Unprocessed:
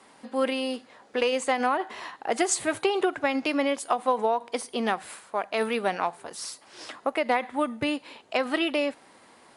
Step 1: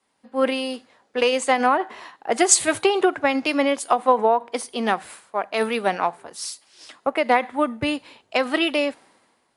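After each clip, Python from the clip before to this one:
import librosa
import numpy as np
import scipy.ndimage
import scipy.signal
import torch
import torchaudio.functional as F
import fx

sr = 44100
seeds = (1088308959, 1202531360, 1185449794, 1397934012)

y = fx.band_widen(x, sr, depth_pct=70)
y = F.gain(torch.from_numpy(y), 5.0).numpy()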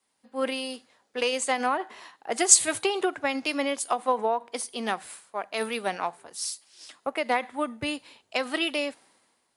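y = fx.high_shelf(x, sr, hz=3600.0, db=9.5)
y = F.gain(torch.from_numpy(y), -8.0).numpy()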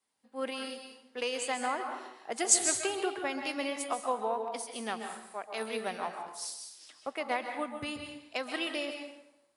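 y = fx.rev_plate(x, sr, seeds[0], rt60_s=0.84, hf_ratio=0.75, predelay_ms=120, drr_db=4.5)
y = F.gain(torch.from_numpy(y), -7.5).numpy()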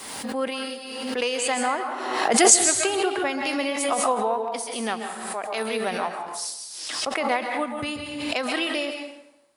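y = fx.pre_swell(x, sr, db_per_s=38.0)
y = F.gain(torch.from_numpy(y), 7.5).numpy()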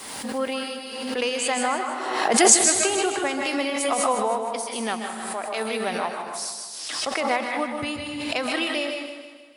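y = fx.echo_feedback(x, sr, ms=155, feedback_pct=51, wet_db=-10.0)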